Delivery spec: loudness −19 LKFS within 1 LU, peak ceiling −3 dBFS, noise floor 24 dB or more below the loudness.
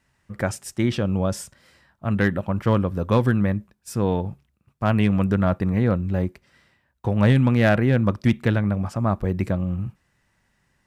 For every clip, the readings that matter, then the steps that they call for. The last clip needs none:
share of clipped samples 0.5%; peaks flattened at −10.0 dBFS; integrated loudness −22.5 LKFS; sample peak −10.0 dBFS; target loudness −19.0 LKFS
→ clipped peaks rebuilt −10 dBFS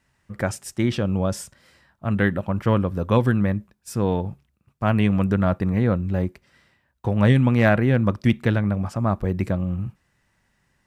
share of clipped samples 0.0%; integrated loudness −22.5 LKFS; sample peak −4.5 dBFS; target loudness −19.0 LKFS
→ level +3.5 dB
brickwall limiter −3 dBFS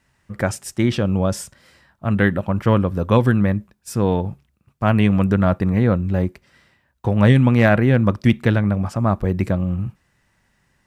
integrated loudness −19.0 LKFS; sample peak −3.0 dBFS; background noise floor −65 dBFS

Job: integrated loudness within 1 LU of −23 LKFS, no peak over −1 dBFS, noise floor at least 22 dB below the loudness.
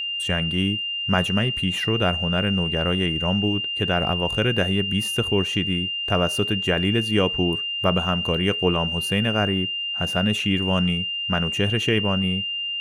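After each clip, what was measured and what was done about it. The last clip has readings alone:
crackle rate 34 per second; interfering tone 2,800 Hz; level of the tone −25 dBFS; integrated loudness −22.0 LKFS; sample peak −4.5 dBFS; target loudness −23.0 LKFS
→ click removal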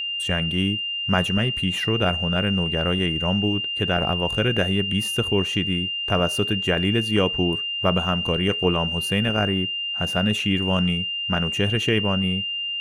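crackle rate 0.62 per second; interfering tone 2,800 Hz; level of the tone −25 dBFS
→ notch filter 2,800 Hz, Q 30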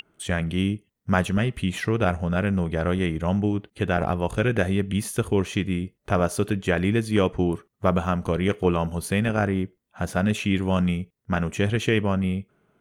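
interfering tone none found; integrated loudness −24.5 LKFS; sample peak −5.0 dBFS; target loudness −23.0 LKFS
→ level +1.5 dB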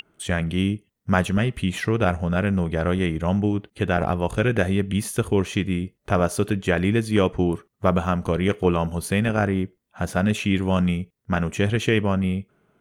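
integrated loudness −23.0 LKFS; sample peak −3.5 dBFS; background noise floor −71 dBFS

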